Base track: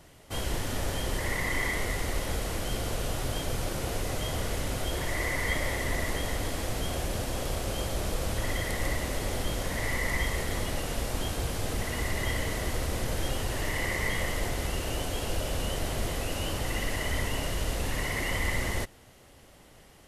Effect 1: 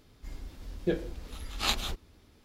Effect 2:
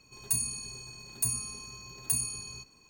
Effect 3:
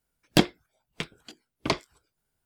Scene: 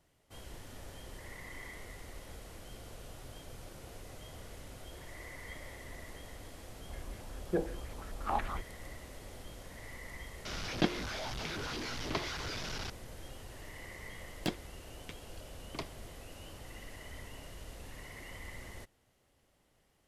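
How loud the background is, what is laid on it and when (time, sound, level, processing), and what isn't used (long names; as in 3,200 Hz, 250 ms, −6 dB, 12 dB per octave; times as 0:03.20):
base track −17.5 dB
0:06.66: mix in 1 −4.5 dB + low-pass on a step sequencer 11 Hz 710–2,100 Hz
0:10.45: mix in 3 −9.5 dB + linear delta modulator 32 kbit/s, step −24 dBFS
0:14.09: mix in 3 −15.5 dB
not used: 2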